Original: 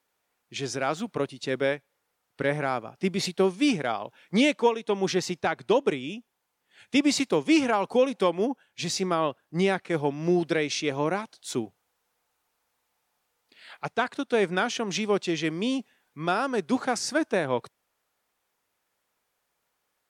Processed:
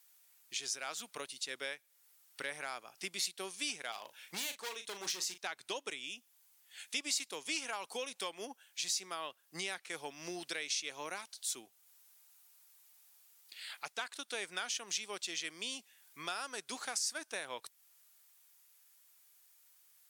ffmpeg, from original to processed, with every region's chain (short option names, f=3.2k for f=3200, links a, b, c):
-filter_complex "[0:a]asettb=1/sr,asplit=3[a][b][c];[a]atrim=end=3.924[d];[b]atrim=start=3.92:end=5.38,asetpts=PTS-STARTPTS,afade=t=in:d=0.004:c=qsin,afade=t=out:st=1.456:d=0.004:c=qsin,volume=24dB,asoftclip=hard,volume=-24dB,asplit=2[e][f];[f]adelay=38,volume=-9.5dB[g];[e][g]amix=inputs=2:normalize=0,atrim=end_sample=64386[h];[c]atrim=start=5.376[i];[d][h]acrossfade=d=0.004:c1=hsin:c2=qsin[j];[j][i]acrossfade=d=0.004:c1=qsin:c2=hsin,aderivative,acompressor=threshold=-58dB:ratio=2,volume=12.5dB"